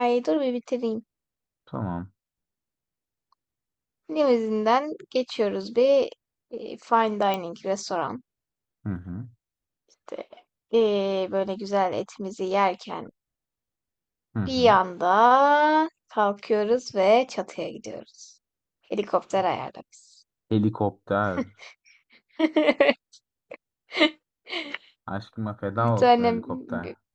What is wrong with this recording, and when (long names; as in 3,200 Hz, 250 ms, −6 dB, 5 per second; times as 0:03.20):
0:07.34: click −14 dBFS